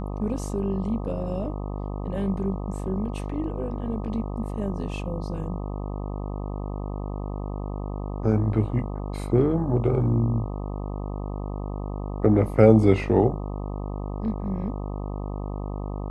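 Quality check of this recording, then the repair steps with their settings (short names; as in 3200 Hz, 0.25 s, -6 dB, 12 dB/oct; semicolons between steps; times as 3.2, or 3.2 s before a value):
buzz 50 Hz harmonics 25 -31 dBFS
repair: de-hum 50 Hz, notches 25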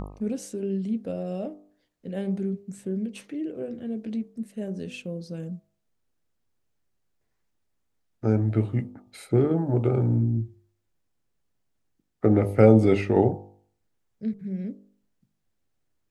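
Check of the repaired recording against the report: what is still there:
none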